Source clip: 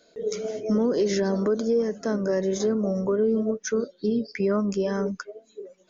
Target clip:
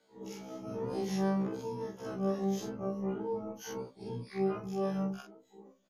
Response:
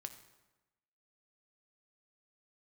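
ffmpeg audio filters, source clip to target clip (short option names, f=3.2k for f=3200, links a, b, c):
-filter_complex "[0:a]afftfilt=real='re':imag='-im':win_size=4096:overlap=0.75,asplit=4[a][b][c][d];[b]asetrate=22050,aresample=44100,atempo=2,volume=-6dB[e];[c]asetrate=33038,aresample=44100,atempo=1.33484,volume=-12dB[f];[d]asetrate=88200,aresample=44100,atempo=0.5,volume=-10dB[g];[a][e][f][g]amix=inputs=4:normalize=0,afftfilt=real='re*1.73*eq(mod(b,3),0)':imag='im*1.73*eq(mod(b,3),0)':win_size=2048:overlap=0.75,volume=-6.5dB"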